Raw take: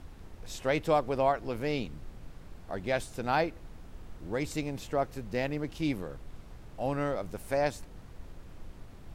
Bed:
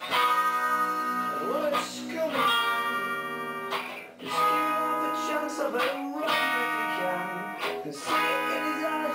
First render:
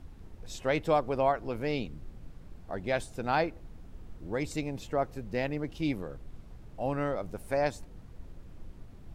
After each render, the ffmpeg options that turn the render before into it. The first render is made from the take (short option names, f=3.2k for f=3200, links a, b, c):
-af "afftdn=nr=6:nf=-50"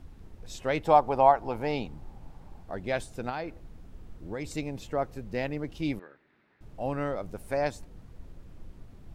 -filter_complex "[0:a]asettb=1/sr,asplit=3[a][b][c];[a]atrim=end=0.854[d];[b]atrim=start=0.85:end=2.63,asetpts=PTS-STARTPTS,afade=t=in:d=0.004:c=qsin,afade=t=out:st=1.776:d=0.004:c=qsin,equalizer=f=840:t=o:w=0.52:g=14[e];[c]atrim=start=2.626[f];[d][e]acrossfade=d=0.004:c1=hsin:c2=qsin[g];[g][f]acrossfade=d=0.004:c1=qsin:c2=hsin,asettb=1/sr,asplit=3[h][i][j];[h]atrim=end=3.294[k];[i]atrim=start=3.29:end=4.46,asetpts=PTS-STARTPTS,afade=t=in:d=0.004:c=qsin,afade=t=out:st=1.166:d=0.004:c=qsin,acompressor=threshold=-30dB:ratio=6:attack=3.2:release=140:knee=1:detection=peak[l];[j]atrim=start=4.456[m];[k][l]acrossfade=d=0.004:c1=hsin:c2=qsin[n];[n][m]acrossfade=d=0.004:c1=qsin:c2=hsin,asettb=1/sr,asplit=3[o][p][q];[o]atrim=end=5.994[r];[p]atrim=start=5.99:end=6.61,asetpts=PTS-STARTPTS,afade=t=in:d=0.004:c=qsin,afade=t=out:st=0.616:d=0.004:c=qsin,highpass=490,equalizer=f=500:t=q:w=4:g=-10,equalizer=f=710:t=q:w=4:g=-10,equalizer=f=1.1k:t=q:w=4:g=-7,equalizer=f=1.8k:t=q:w=4:g=7,equalizer=f=3.1k:t=q:w=4:g=-7,lowpass=f=3.4k:w=0.5412,lowpass=f=3.4k:w=1.3066[s];[q]atrim=start=6.606[t];[r][s]acrossfade=d=0.004:c1=hsin:c2=qsin[u];[u][t]acrossfade=d=0.004:c1=qsin:c2=hsin"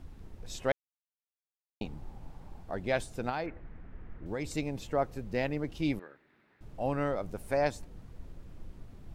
-filter_complex "[0:a]asettb=1/sr,asplit=3[a][b][c];[a]atrim=end=3.464[d];[b]atrim=start=3.46:end=4.26,asetpts=PTS-STARTPTS,afade=t=in:d=0.004:c=qsin,afade=t=out:st=0.796:d=0.004:c=qsin,lowpass=f=1.9k:t=q:w=2.3[e];[c]atrim=start=4.256[f];[d][e]acrossfade=d=0.004:c1=hsin:c2=qsin[g];[g][f]acrossfade=d=0.004:c1=qsin:c2=hsin,asplit=3[h][i][j];[h]atrim=end=0.72,asetpts=PTS-STARTPTS,afade=t=out:st=0.716:d=0.004:c=hsin[k];[i]atrim=start=0.72:end=1.81,asetpts=PTS-STARTPTS,volume=0[l];[j]atrim=start=1.81,asetpts=PTS-STARTPTS,afade=t=in:d=0.004:c=hsin[m];[k][l][m]concat=n=3:v=0:a=1"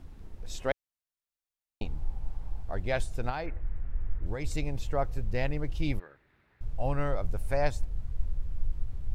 -af "asubboost=boost=8.5:cutoff=80"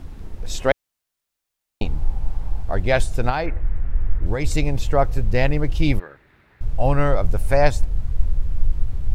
-af "volume=11.5dB"